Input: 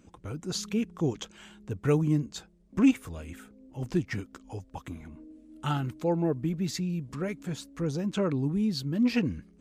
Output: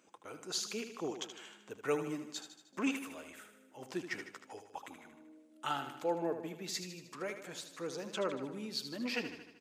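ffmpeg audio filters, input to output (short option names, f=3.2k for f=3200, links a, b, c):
-filter_complex "[0:a]highpass=500,asplit=2[a][b];[b]aecho=0:1:77|154|231|308|385|462|539:0.335|0.194|0.113|0.0654|0.0379|0.022|0.0128[c];[a][c]amix=inputs=2:normalize=0,volume=-2.5dB"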